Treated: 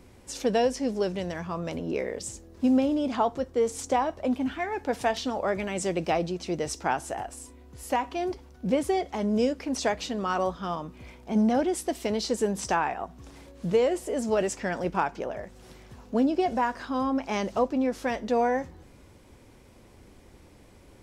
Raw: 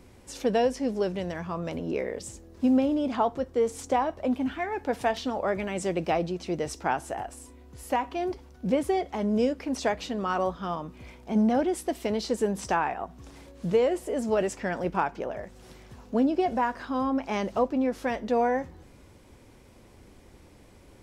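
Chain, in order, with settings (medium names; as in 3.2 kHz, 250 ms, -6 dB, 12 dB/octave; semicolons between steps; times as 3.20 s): dynamic bell 6.5 kHz, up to +5 dB, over -51 dBFS, Q 0.72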